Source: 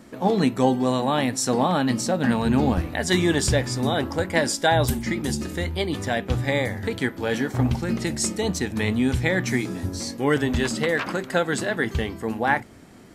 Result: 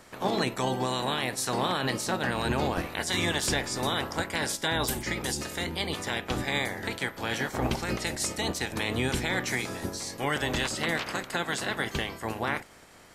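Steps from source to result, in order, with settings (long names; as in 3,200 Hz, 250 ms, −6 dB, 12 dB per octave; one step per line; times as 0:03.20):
ceiling on every frequency bin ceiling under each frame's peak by 18 dB
brickwall limiter −10.5 dBFS, peak gain reduction 6.5 dB
level −5.5 dB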